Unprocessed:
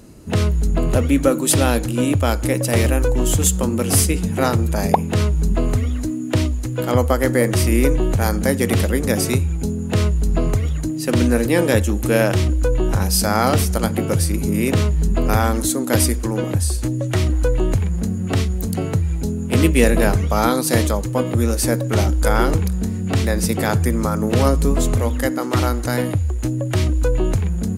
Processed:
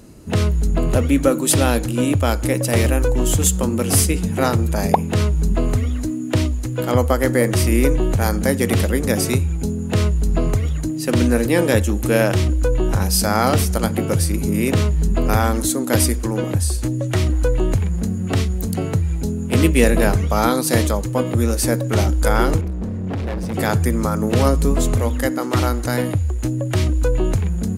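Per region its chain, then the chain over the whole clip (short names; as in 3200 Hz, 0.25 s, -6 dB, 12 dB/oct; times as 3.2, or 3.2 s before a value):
22.61–23.54 LPF 1300 Hz 6 dB/oct + hard clip -21.5 dBFS
whole clip: dry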